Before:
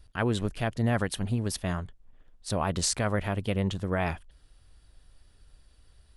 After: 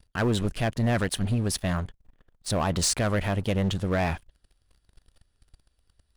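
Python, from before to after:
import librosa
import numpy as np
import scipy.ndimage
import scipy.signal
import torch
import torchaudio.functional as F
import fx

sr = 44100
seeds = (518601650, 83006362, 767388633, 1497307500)

y = fx.leveller(x, sr, passes=3)
y = F.gain(torch.from_numpy(y), -6.0).numpy()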